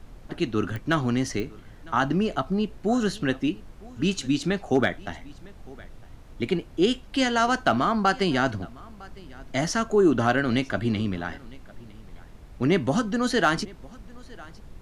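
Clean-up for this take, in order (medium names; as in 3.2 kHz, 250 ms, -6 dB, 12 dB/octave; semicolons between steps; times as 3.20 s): clip repair -10 dBFS; de-click; noise print and reduce 25 dB; inverse comb 956 ms -23 dB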